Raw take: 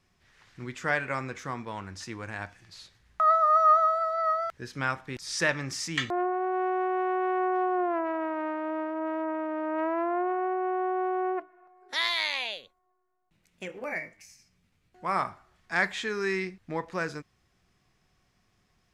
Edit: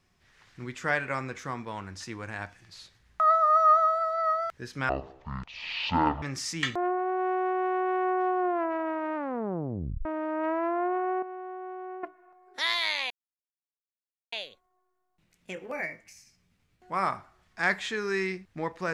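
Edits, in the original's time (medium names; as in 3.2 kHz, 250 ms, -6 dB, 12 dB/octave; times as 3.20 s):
4.89–5.57 s: speed 51%
8.50 s: tape stop 0.90 s
10.57–11.38 s: gain -10.5 dB
12.45 s: insert silence 1.22 s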